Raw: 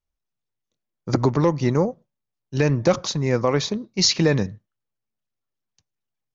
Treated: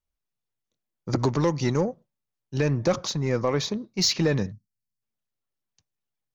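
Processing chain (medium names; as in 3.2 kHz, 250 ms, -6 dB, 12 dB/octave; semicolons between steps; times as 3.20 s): in parallel at -4 dB: saturation -21 dBFS, distortion -7 dB; 1.19–1.81 s: on the sum: treble shelf 3 kHz +9 dB; 4.52–5.02 s: time-frequency box 270–4200 Hz -23 dB; trim -6.5 dB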